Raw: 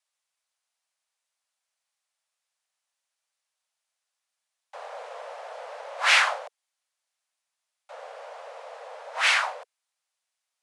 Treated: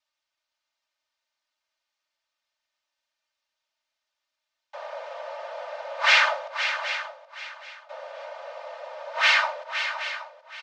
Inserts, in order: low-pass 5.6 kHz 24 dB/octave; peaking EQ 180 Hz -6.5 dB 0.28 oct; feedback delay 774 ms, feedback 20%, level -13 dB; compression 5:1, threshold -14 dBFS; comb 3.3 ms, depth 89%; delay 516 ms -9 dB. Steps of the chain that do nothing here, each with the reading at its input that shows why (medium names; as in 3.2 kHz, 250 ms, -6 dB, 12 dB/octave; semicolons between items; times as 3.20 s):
peaking EQ 180 Hz: input has nothing below 400 Hz